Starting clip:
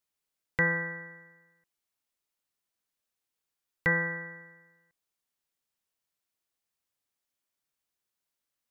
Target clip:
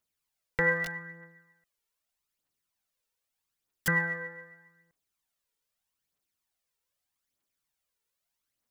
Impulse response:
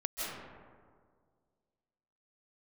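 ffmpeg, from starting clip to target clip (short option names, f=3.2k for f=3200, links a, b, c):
-filter_complex "[0:a]asettb=1/sr,asplit=3[a][b][c];[a]atrim=end=0.844[d];[b]atrim=start=0.84:end=3.88,asetpts=PTS-STARTPTS,afade=t=in:d=0.004:c=qsin,afade=t=out:st=3.036:d=0.004:c=qsin,aeval=exprs='(mod(23.7*val(0)+1,2)-1)/23.7':c=same[e];[c]atrim=start=3.876[f];[d][e]acrossfade=d=0.004:c1=hsin:c2=qsin[g];[g][f]acrossfade=d=0.004:c1=qsin:c2=hsin,aphaser=in_gain=1:out_gain=1:delay=2.3:decay=0.53:speed=0.81:type=triangular"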